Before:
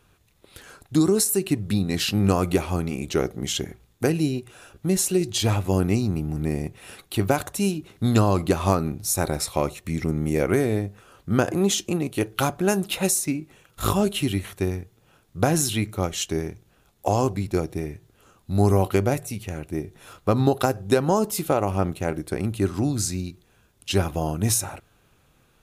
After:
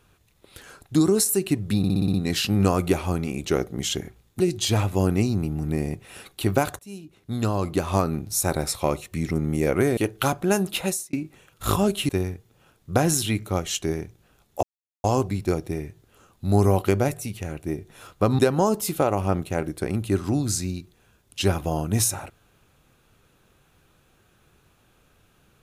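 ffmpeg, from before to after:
ffmpeg -i in.wav -filter_complex "[0:a]asplit=14[link_01][link_02][link_03][link_04][link_05][link_06][link_07][link_08][link_09][link_10][link_11][link_12][link_13][link_14];[link_01]atrim=end=1.842[link_15];[link_02]atrim=start=1.778:end=1.842[link_16];[link_03]atrim=start=1.778:end=1.842[link_17];[link_04]atrim=start=1.778:end=1.842[link_18];[link_05]atrim=start=1.778:end=1.842[link_19];[link_06]atrim=start=1.778:end=1.842[link_20];[link_07]atrim=start=1.778:end=4.042[link_21];[link_08]atrim=start=5.128:end=7.52,asetpts=PTS-STARTPTS,afade=type=out:start_time=2.388:duration=0.004:curve=hsin:silence=0.0749894[link_22];[link_09]atrim=start=7.52:end=10.702,asetpts=PTS-STARTPTS,afade=type=in:duration=1.42:silence=0.0749894[link_23];[link_10]atrim=start=12.138:end=13.3,asetpts=PTS-STARTPTS,afade=type=out:start_time=0.812:duration=0.35[link_24];[link_11]atrim=start=13.3:end=14.262,asetpts=PTS-STARTPTS,afade=type=in:duration=0.004:curve=hsin[link_25];[link_12]atrim=start=14.558:end=17.1,asetpts=PTS-STARTPTS,afade=type=out:start_time=2.538:duration=0.004:curve=hsin,apad=pad_dur=0.41[link_26];[link_13]atrim=start=17.1:end=20.452,asetpts=PTS-STARTPTS,afade=type=in:duration=0.004:curve=hsin[link_27];[link_14]atrim=start=20.888[link_28];[link_15][link_16]acrossfade=duration=0.004:curve1=hsin:curve2=hsin[link_29];[link_29][link_17]acrossfade=duration=0.004:curve1=hsin:curve2=hsin[link_30];[link_30][link_18]acrossfade=duration=0.004:curve1=hsin:curve2=hsin[link_31];[link_31][link_19]acrossfade=duration=0.004:curve1=hsin:curve2=hsin[link_32];[link_32][link_20]acrossfade=duration=0.004:curve1=hsin:curve2=hsin[link_33];[link_33][link_21]acrossfade=duration=0.004:curve1=hsin:curve2=hsin[link_34];[link_22][link_23]concat=n=2:v=0:a=1[link_35];[link_34][link_35]acrossfade=duration=0.004:curve1=hsin:curve2=hsin[link_36];[link_24][link_25]concat=n=2:v=0:a=1[link_37];[link_36][link_37]acrossfade=duration=0.004:curve1=hsin:curve2=hsin[link_38];[link_26][link_27]concat=n=2:v=0:a=1[link_39];[link_38][link_39]acrossfade=duration=0.004:curve1=hsin:curve2=hsin[link_40];[link_40][link_28]acrossfade=duration=0.004:curve1=hsin:curve2=hsin" out.wav

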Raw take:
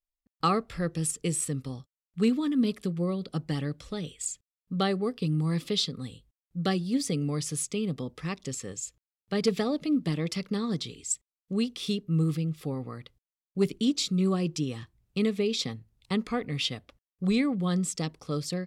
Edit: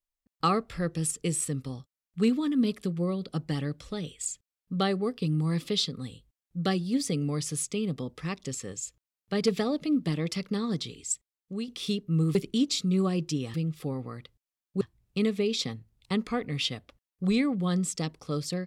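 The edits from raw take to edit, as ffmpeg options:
ffmpeg -i in.wav -filter_complex "[0:a]asplit=5[link_01][link_02][link_03][link_04][link_05];[link_01]atrim=end=11.68,asetpts=PTS-STARTPTS,afade=type=out:start_time=11.05:duration=0.63:silence=0.398107[link_06];[link_02]atrim=start=11.68:end=12.352,asetpts=PTS-STARTPTS,afade=type=in:duration=0.004:curve=hsin:silence=0.398107[link_07];[link_03]atrim=start=13.618:end=14.812[link_08];[link_04]atrim=start=12.348:end=13.622[link_09];[link_05]atrim=start=14.808[link_10];[link_06][link_07]concat=n=2:v=0:a=1[link_11];[link_11][link_08]acrossfade=duration=0.004:curve1=hsin:curve2=hsin[link_12];[link_12][link_09]acrossfade=duration=0.004:curve1=hsin:curve2=hsin[link_13];[link_13][link_10]acrossfade=duration=0.004:curve1=hsin:curve2=hsin" out.wav

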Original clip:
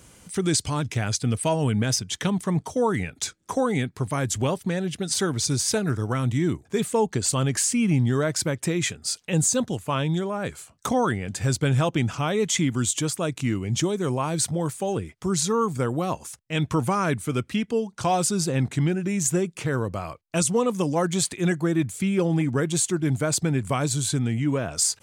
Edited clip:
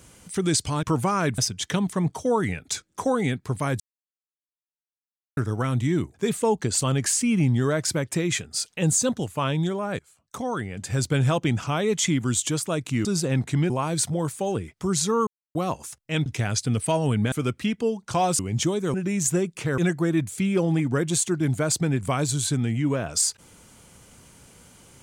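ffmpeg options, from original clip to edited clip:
ffmpeg -i in.wav -filter_complex "[0:a]asplit=15[link_01][link_02][link_03][link_04][link_05][link_06][link_07][link_08][link_09][link_10][link_11][link_12][link_13][link_14][link_15];[link_01]atrim=end=0.832[link_16];[link_02]atrim=start=16.668:end=17.222[link_17];[link_03]atrim=start=1.888:end=4.31,asetpts=PTS-STARTPTS,afade=type=out:start_time=2.418:duration=0.004:curve=hsin[link_18];[link_04]atrim=start=4.31:end=5.88,asetpts=PTS-STARTPTS,volume=0[link_19];[link_05]atrim=start=5.88:end=10.5,asetpts=PTS-STARTPTS,afade=type=in:duration=0.004:curve=hsin,afade=type=out:start_time=4.616:duration=0.004:curve=hsin:silence=0.0944061[link_20];[link_06]atrim=start=10.5:end=13.562,asetpts=PTS-STARTPTS,afade=type=in:duration=1.17:silence=0.0944061[link_21];[link_07]atrim=start=18.288:end=18.942[link_22];[link_08]atrim=start=14.108:end=15.68,asetpts=PTS-STARTPTS,afade=type=out:start_time=1.568:duration=0.004:curve=hsin[link_23];[link_09]atrim=start=15.68:end=15.96,asetpts=PTS-STARTPTS,volume=0[link_24];[link_10]atrim=start=15.96:end=16.672,asetpts=PTS-STARTPTS,afade=type=in:duration=0.004:curve=hsin[link_25];[link_11]atrim=start=0.828:end=1.892[link_26];[link_12]atrim=start=17.218:end=18.292[link_27];[link_13]atrim=start=13.558:end=14.112[link_28];[link_14]atrim=start=18.938:end=19.782[link_29];[link_15]atrim=start=21.398[link_30];[link_16][link_17]acrossfade=duration=0.004:curve1=hsin:curve2=hsin[link_31];[link_18][link_19][link_20][link_21]concat=n=4:v=0:a=1[link_32];[link_31][link_32]acrossfade=duration=0.004:curve1=hsin:curve2=hsin[link_33];[link_33][link_22]acrossfade=duration=0.004:curve1=hsin:curve2=hsin[link_34];[link_23][link_24][link_25]concat=n=3:v=0:a=1[link_35];[link_34][link_35]acrossfade=duration=0.004:curve1=hsin:curve2=hsin[link_36];[link_36][link_26]acrossfade=duration=0.004:curve1=hsin:curve2=hsin[link_37];[link_37][link_27]acrossfade=duration=0.004:curve1=hsin:curve2=hsin[link_38];[link_38][link_28]acrossfade=duration=0.004:curve1=hsin:curve2=hsin[link_39];[link_39][link_29]acrossfade=duration=0.004:curve1=hsin:curve2=hsin[link_40];[link_40][link_30]acrossfade=duration=0.004:curve1=hsin:curve2=hsin" out.wav

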